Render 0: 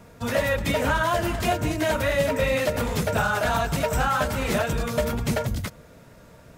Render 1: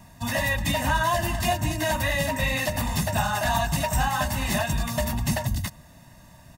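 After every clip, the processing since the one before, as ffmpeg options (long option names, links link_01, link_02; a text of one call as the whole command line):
ffmpeg -i in.wav -af "highshelf=frequency=3900:gain=6.5,aecho=1:1:1.1:0.91,volume=-4dB" out.wav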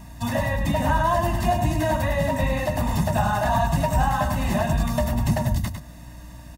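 ffmpeg -i in.wav -filter_complex "[0:a]acrossover=split=170|1300[link_01][link_02][link_03];[link_03]acompressor=threshold=-40dB:ratio=6[link_04];[link_01][link_02][link_04]amix=inputs=3:normalize=0,aeval=exprs='val(0)+0.00501*(sin(2*PI*60*n/s)+sin(2*PI*2*60*n/s)/2+sin(2*PI*3*60*n/s)/3+sin(2*PI*4*60*n/s)/4+sin(2*PI*5*60*n/s)/5)':channel_layout=same,aecho=1:1:103:0.447,volume=3.5dB" out.wav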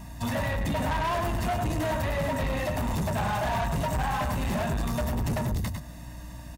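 ffmpeg -i in.wav -af "asoftclip=type=tanh:threshold=-24.5dB" out.wav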